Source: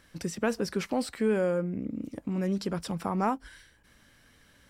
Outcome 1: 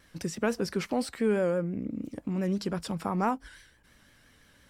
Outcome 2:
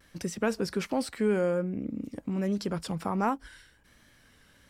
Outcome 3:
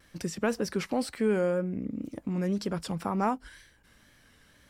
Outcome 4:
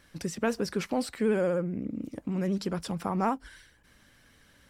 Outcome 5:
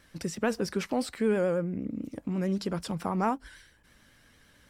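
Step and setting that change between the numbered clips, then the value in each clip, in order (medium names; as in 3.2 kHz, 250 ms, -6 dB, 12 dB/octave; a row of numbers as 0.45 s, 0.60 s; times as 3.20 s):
vibrato, rate: 5.9 Hz, 1.3 Hz, 2 Hz, 16 Hz, 9 Hz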